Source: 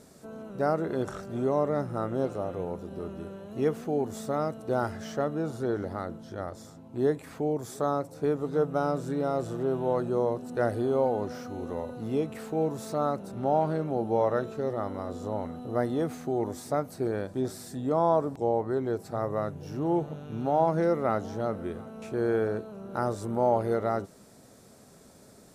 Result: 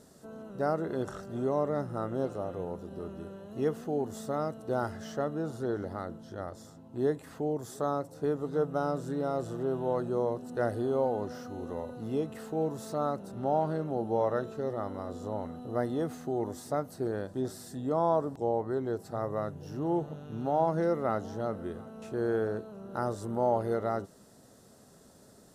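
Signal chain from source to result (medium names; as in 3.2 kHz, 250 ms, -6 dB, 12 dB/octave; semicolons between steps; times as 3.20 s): band-stop 2.3 kHz, Q 5.9; trim -3 dB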